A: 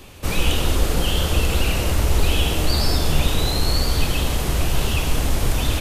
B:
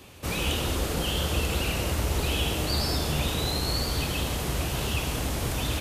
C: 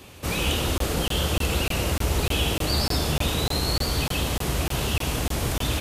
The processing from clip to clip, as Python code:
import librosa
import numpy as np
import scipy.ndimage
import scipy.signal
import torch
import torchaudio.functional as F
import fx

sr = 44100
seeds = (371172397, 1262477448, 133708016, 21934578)

y1 = scipy.signal.sosfilt(scipy.signal.butter(2, 64.0, 'highpass', fs=sr, output='sos'), x)
y1 = y1 * 10.0 ** (-5.0 / 20.0)
y2 = fx.buffer_crackle(y1, sr, first_s=0.78, period_s=0.3, block=1024, kind='zero')
y2 = y2 * 10.0 ** (3.0 / 20.0)